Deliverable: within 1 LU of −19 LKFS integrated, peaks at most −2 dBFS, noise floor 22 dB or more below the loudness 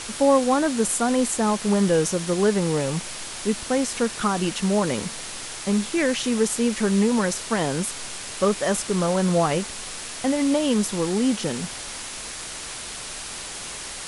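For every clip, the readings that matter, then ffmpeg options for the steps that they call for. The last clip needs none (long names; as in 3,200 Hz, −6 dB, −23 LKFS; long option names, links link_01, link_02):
background noise floor −35 dBFS; target noise floor −46 dBFS; integrated loudness −23.5 LKFS; sample peak −7.5 dBFS; target loudness −19.0 LKFS
→ -af "afftdn=noise_reduction=11:noise_floor=-35"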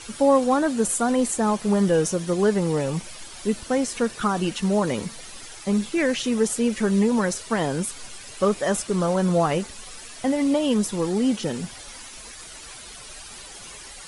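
background noise floor −41 dBFS; target noise floor −45 dBFS
→ -af "afftdn=noise_reduction=6:noise_floor=-41"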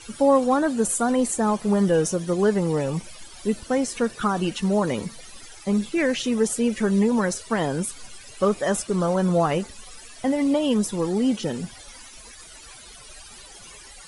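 background noise floor −45 dBFS; integrated loudness −23.0 LKFS; sample peak −8.0 dBFS; target loudness −19.0 LKFS
→ -af "volume=4dB"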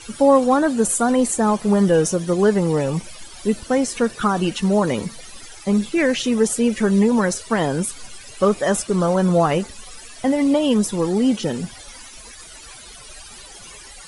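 integrated loudness −19.0 LKFS; sample peak −4.0 dBFS; background noise floor −41 dBFS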